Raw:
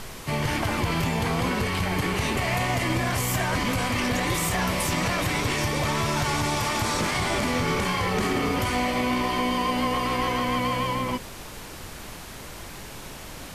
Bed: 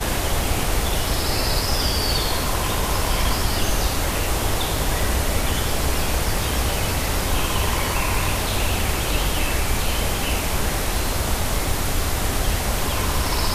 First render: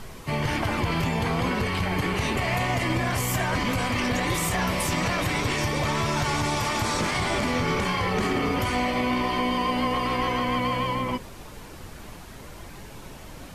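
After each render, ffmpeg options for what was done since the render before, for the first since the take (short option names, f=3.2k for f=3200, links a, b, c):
-af "afftdn=nr=7:nf=-40"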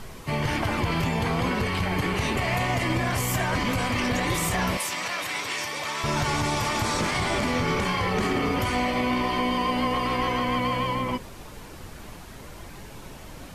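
-filter_complex "[0:a]asettb=1/sr,asplit=3[a][b][c];[a]atrim=end=4.774[d];[b]atrim=start=4.77:end=6.04,asetpts=PTS-STARTPTS,afade=t=in:d=0.004:c=qsin,afade=t=out:st=1.266:d=0.004:c=qsin,highpass=f=1.2k:p=1[e];[c]atrim=start=6.036[f];[d][e]acrossfade=d=0.004:c1=hsin:c2=qsin[g];[g][f]acrossfade=d=0.004:c1=qsin:c2=hsin"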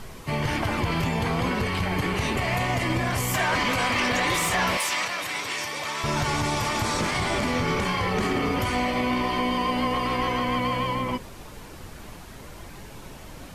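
-filter_complex "[0:a]asettb=1/sr,asplit=3[a][b][c];[a]atrim=end=3.344[d];[b]atrim=start=3.34:end=5.05,asetpts=PTS-STARTPTS,afade=t=in:d=0.004:c=qsin,afade=t=out:st=1.706:d=0.004:c=qsin,asplit=2[e][f];[f]highpass=f=720:p=1,volume=11dB,asoftclip=type=tanh:threshold=-14dB[g];[e][g]amix=inputs=2:normalize=0,lowpass=f=6.1k:p=1,volume=-6dB[h];[c]atrim=start=5.046[i];[d][h]acrossfade=d=0.004:c1=hsin:c2=qsin[j];[j][i]acrossfade=d=0.004:c1=qsin:c2=hsin"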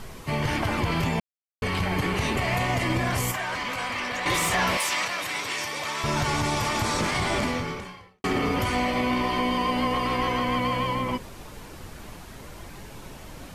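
-filter_complex "[0:a]asettb=1/sr,asplit=3[a][b][c];[a]atrim=end=3.314[d];[b]atrim=start=3.31:end=4.26,asetpts=PTS-STARTPTS,afade=t=in:d=0.004:c=qsin,afade=t=out:st=0.946:d=0.004:c=qsin,acrossover=split=570|2700[e][f][g];[e]acompressor=threshold=-40dB:ratio=4[h];[f]acompressor=threshold=-30dB:ratio=4[i];[g]acompressor=threshold=-39dB:ratio=4[j];[h][i][j]amix=inputs=3:normalize=0[k];[c]atrim=start=4.256[l];[d][k]acrossfade=d=0.004:c1=hsin:c2=qsin[m];[m][l]acrossfade=d=0.004:c1=qsin:c2=hsin,asplit=4[n][o][p][q];[n]atrim=end=1.2,asetpts=PTS-STARTPTS,afade=t=out:st=1.196:d=0.004:c=hsin[r];[o]atrim=start=1.2:end=1.62,asetpts=PTS-STARTPTS,volume=0[s];[p]atrim=start=1.62:end=8.24,asetpts=PTS-STARTPTS,afade=t=in:d=0.004:c=hsin,afade=t=out:st=5.81:d=0.81:c=qua[t];[q]atrim=start=8.24,asetpts=PTS-STARTPTS,afade=t=in:d=0.004:c=hsin[u];[r][s][t][u]concat=n=4:v=0:a=1"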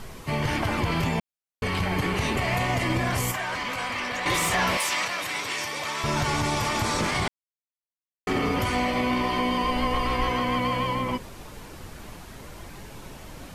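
-filter_complex "[0:a]asplit=3[a][b][c];[a]afade=t=out:st=9.63:d=0.02[d];[b]asubboost=boost=4:cutoff=67,afade=t=in:st=9.63:d=0.02,afade=t=out:st=10.3:d=0.02[e];[c]afade=t=in:st=10.3:d=0.02[f];[d][e][f]amix=inputs=3:normalize=0,asplit=3[g][h][i];[g]atrim=end=7.28,asetpts=PTS-STARTPTS,afade=t=out:st=7.276:d=0.004:c=hsin[j];[h]atrim=start=7.28:end=8.27,asetpts=PTS-STARTPTS,volume=0[k];[i]atrim=start=8.27,asetpts=PTS-STARTPTS,afade=t=in:d=0.004:c=hsin[l];[j][k][l]concat=n=3:v=0:a=1"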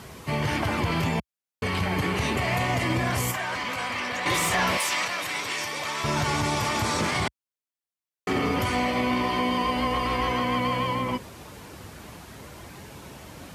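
-af "highpass=f=60:w=0.5412,highpass=f=60:w=1.3066"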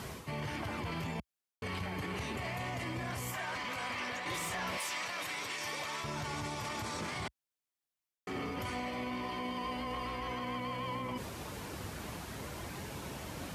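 -af "areverse,acompressor=threshold=-33dB:ratio=10,areverse,alimiter=level_in=6dB:limit=-24dB:level=0:latency=1:release=30,volume=-6dB"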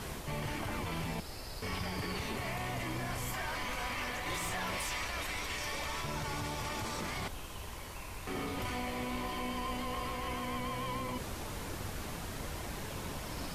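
-filter_complex "[1:a]volume=-23dB[a];[0:a][a]amix=inputs=2:normalize=0"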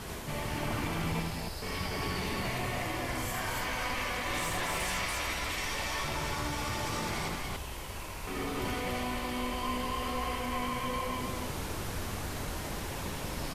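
-af "aecho=1:1:78.72|285.7:0.794|0.891"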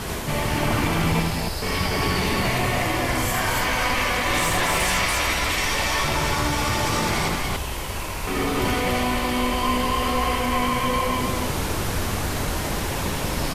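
-af "volume=11.5dB"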